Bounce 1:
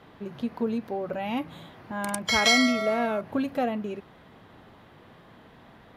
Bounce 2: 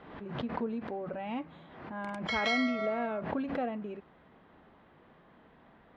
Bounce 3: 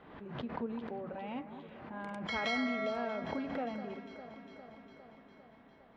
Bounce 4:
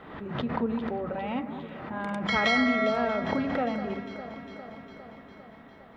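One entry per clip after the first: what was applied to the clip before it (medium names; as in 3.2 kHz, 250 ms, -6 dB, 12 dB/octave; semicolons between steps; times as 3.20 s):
low-pass 2.6 kHz 12 dB/octave; peaking EQ 110 Hz -14 dB 0.29 oct; swell ahead of each attack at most 58 dB/s; trim -7 dB
echo whose repeats swap between lows and highs 202 ms, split 2 kHz, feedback 81%, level -10 dB; trim -4.5 dB
small resonant body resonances 1.3/1.9/3.6 kHz, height 7 dB, ringing for 35 ms; on a send at -22 dB: reverberation, pre-delay 76 ms; on the sum: trim +9 dB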